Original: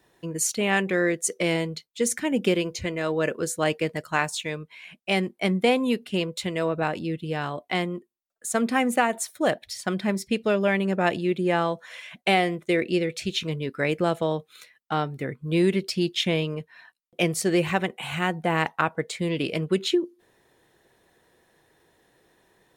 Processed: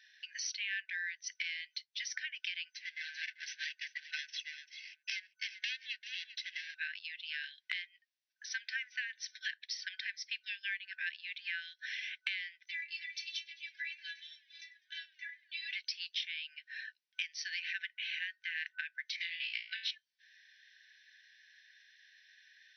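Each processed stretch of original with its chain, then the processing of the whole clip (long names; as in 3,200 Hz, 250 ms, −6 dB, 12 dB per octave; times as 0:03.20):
0:02.72–0:06.75: lower of the sound and its delayed copy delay 1.5 ms + single-tap delay 391 ms −13.5 dB + expander for the loud parts, over −39 dBFS
0:12.66–0:15.71: high-shelf EQ 6,300 Hz +9 dB + stiff-string resonator 84 Hz, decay 0.52 s, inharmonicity 0.03 + feedback echo with a swinging delay time 102 ms, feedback 68%, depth 132 cents, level −24 dB
0:19.16–0:19.91: high-frequency loss of the air 77 metres + flutter between parallel walls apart 3 metres, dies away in 0.48 s + transient designer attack +10 dB, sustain −4 dB
whole clip: brick-wall band-pass 1,500–6,100 Hz; downward compressor 4 to 1, threshold −45 dBFS; level +6 dB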